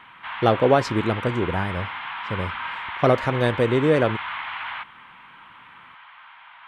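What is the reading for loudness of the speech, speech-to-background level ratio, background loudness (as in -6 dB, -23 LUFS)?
-22.5 LUFS, 8.5 dB, -31.0 LUFS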